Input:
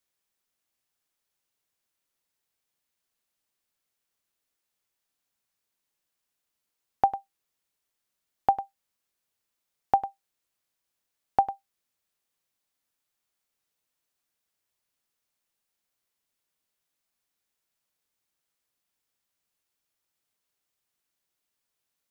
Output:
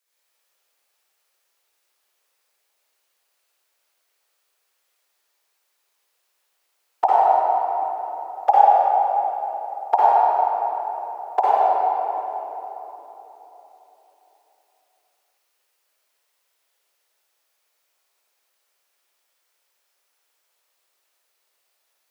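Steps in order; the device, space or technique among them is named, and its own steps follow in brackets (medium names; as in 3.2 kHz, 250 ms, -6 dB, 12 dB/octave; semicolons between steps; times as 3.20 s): whispering ghost (whisper effect; high-pass 420 Hz 24 dB/octave; reverberation RT60 3.8 s, pre-delay 50 ms, DRR -9.5 dB); trim +4 dB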